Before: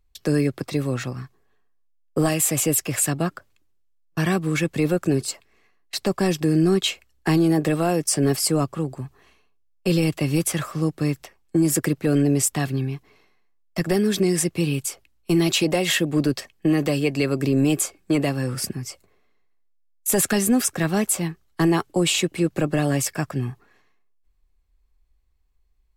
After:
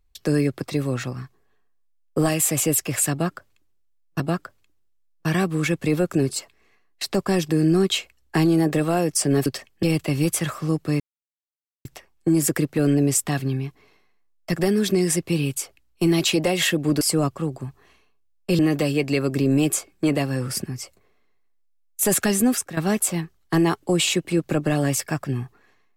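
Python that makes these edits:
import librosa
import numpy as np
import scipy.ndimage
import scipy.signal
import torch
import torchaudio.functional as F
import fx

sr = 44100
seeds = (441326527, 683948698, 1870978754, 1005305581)

y = fx.edit(x, sr, fx.repeat(start_s=3.12, length_s=1.08, count=2),
    fx.swap(start_s=8.38, length_s=1.58, other_s=16.29, other_length_s=0.37),
    fx.insert_silence(at_s=11.13, length_s=0.85),
    fx.fade_out_to(start_s=20.55, length_s=0.29, floor_db=-13.0), tone=tone)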